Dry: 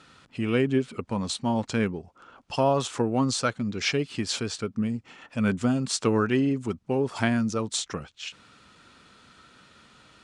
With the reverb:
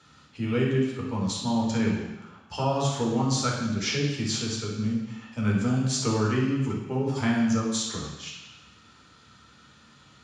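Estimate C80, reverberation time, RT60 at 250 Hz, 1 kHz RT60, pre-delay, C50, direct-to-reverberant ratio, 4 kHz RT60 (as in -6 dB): 4.5 dB, 1.0 s, 1.0 s, 1.1 s, 3 ms, 1.5 dB, -3.5 dB, 1.1 s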